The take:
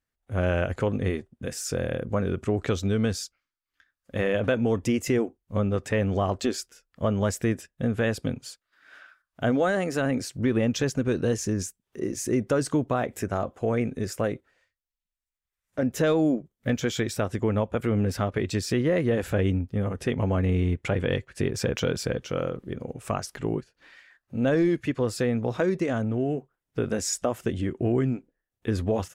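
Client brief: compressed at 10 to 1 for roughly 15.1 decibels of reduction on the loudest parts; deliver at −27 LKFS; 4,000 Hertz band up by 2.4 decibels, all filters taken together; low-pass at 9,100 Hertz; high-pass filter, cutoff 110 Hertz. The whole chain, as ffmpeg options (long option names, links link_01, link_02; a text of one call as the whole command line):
ffmpeg -i in.wav -af "highpass=110,lowpass=9100,equalizer=frequency=4000:width_type=o:gain=3.5,acompressor=threshold=-35dB:ratio=10,volume=13.5dB" out.wav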